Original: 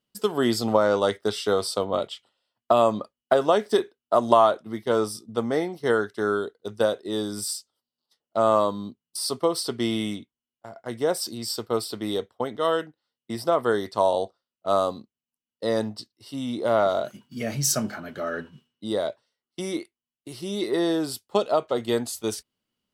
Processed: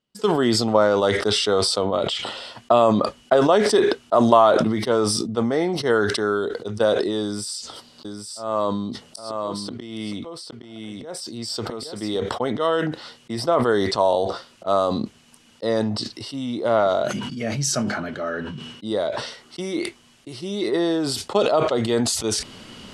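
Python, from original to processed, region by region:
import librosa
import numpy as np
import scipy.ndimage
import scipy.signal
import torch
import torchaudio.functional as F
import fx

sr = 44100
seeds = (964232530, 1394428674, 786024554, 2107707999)

y = fx.chain(x, sr, fx.auto_swell(attack_ms=382.0),
    fx.echo_single(ms=816, db=-5.0), at=(7.23, 12.17))
y = scipy.signal.sosfilt(scipy.signal.bessel(6, 7100.0, 'lowpass', norm='mag', fs=sr, output='sos'), y)
y = fx.sustainer(y, sr, db_per_s=30.0)
y = y * 10.0 ** (2.0 / 20.0)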